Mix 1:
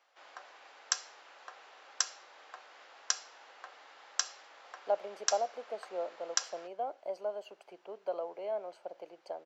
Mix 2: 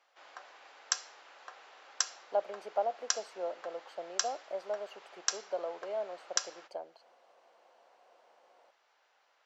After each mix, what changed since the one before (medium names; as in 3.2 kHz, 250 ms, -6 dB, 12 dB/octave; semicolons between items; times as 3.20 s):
speech: entry -2.55 s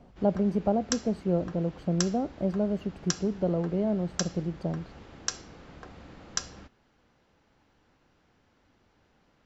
speech: entry -2.10 s; master: remove high-pass 610 Hz 24 dB/octave